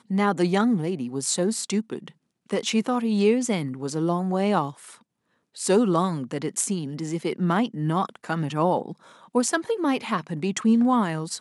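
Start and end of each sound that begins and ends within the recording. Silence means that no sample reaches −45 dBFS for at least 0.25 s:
0:02.50–0:04.97

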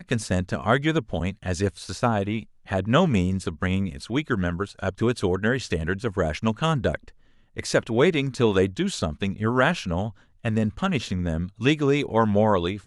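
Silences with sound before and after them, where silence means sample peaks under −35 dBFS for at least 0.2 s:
0:02.43–0:02.68
0:07.08–0:07.57
0:10.10–0:10.44

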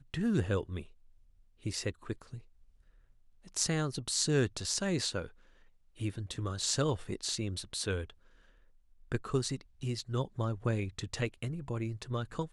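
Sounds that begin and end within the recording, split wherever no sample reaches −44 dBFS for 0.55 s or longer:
0:01.65–0:02.39
0:03.47–0:05.27
0:05.99–0:08.10

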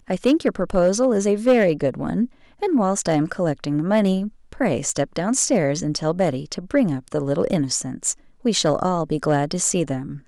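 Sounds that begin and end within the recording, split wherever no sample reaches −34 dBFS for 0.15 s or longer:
0:02.62–0:04.28
0:04.53–0:08.13

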